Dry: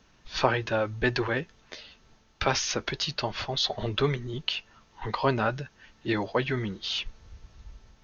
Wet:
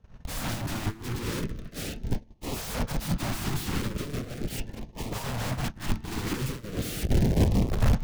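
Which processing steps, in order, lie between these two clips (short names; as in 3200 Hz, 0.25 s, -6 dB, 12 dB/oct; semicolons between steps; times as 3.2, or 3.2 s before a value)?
in parallel at 0 dB: compressor 16:1, threshold -35 dBFS, peak gain reduction 19.5 dB; on the sum: power-law curve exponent 0.5; limiter -16.5 dBFS, peak gain reduction 11 dB; high shelf 3800 Hz -8 dB; FDN reverb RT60 2.7 s, low-frequency decay 1.3×, high-frequency decay 0.65×, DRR 20 dB; wrapped overs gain 24.5 dB; LFO notch saw up 0.39 Hz 290–1600 Hz; gate -28 dBFS, range -42 dB; tilt shelf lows +9 dB, about 680 Hz; gain +5 dB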